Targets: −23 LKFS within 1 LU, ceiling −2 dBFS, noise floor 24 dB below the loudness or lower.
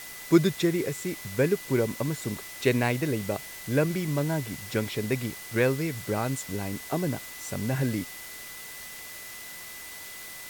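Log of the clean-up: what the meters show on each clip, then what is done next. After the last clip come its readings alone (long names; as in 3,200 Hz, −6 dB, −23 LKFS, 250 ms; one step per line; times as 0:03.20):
interfering tone 2,000 Hz; level of the tone −45 dBFS; background noise floor −42 dBFS; target noise floor −53 dBFS; integrated loudness −29.0 LKFS; sample peak −8.5 dBFS; target loudness −23.0 LKFS
→ notch filter 2,000 Hz, Q 30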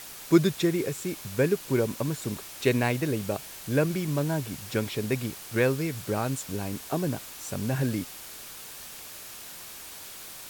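interfering tone none found; background noise floor −43 dBFS; target noise floor −53 dBFS
→ broadband denoise 10 dB, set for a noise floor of −43 dBFS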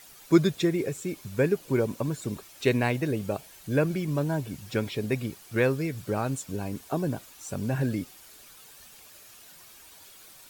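background noise floor −51 dBFS; target noise floor −53 dBFS
→ broadband denoise 6 dB, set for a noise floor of −51 dBFS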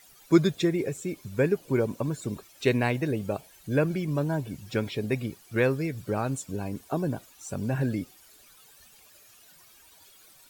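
background noise floor −56 dBFS; integrated loudness −28.5 LKFS; sample peak −8.5 dBFS; target loudness −23.0 LKFS
→ level +5.5 dB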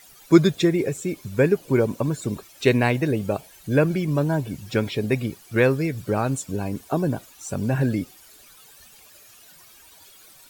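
integrated loudness −23.0 LKFS; sample peak −3.0 dBFS; background noise floor −50 dBFS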